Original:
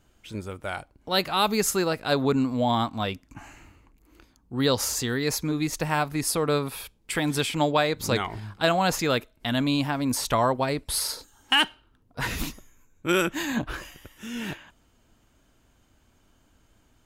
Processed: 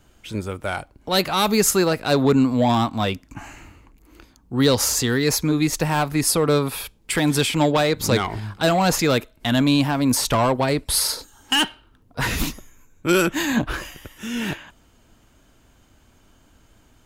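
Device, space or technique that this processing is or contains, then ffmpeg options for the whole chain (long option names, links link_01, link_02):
one-band saturation: -filter_complex "[0:a]acrossover=split=420|4600[link_01][link_02][link_03];[link_02]asoftclip=type=tanh:threshold=-23.5dB[link_04];[link_01][link_04][link_03]amix=inputs=3:normalize=0,volume=7dB"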